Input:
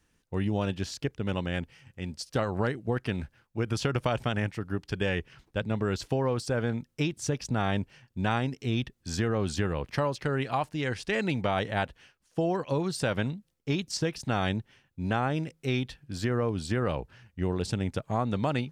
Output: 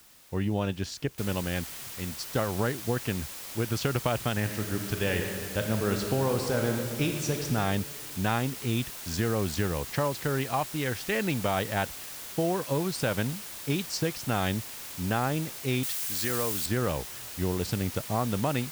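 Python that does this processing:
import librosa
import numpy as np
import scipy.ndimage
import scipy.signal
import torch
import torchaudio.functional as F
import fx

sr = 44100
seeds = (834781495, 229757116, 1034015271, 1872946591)

y = fx.noise_floor_step(x, sr, seeds[0], at_s=1.18, before_db=-56, after_db=-41, tilt_db=0.0)
y = fx.reverb_throw(y, sr, start_s=4.4, length_s=3.05, rt60_s=2.2, drr_db=3.5)
y = fx.tilt_eq(y, sr, slope=2.5, at=(15.83, 16.66))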